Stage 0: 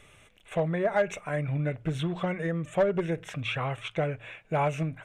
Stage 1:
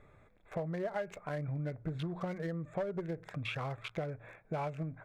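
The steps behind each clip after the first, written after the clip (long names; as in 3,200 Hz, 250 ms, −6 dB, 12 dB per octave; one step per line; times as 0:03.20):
adaptive Wiener filter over 15 samples
downward compressor 3 to 1, threshold −34 dBFS, peak gain reduction 11 dB
level −2 dB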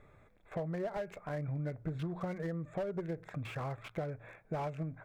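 slew-rate limiting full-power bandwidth 16 Hz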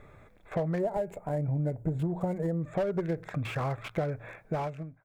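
fade-out on the ending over 0.61 s
gain on a spectral selection 0:00.79–0:02.62, 1,000–6,600 Hz −11 dB
level +7.5 dB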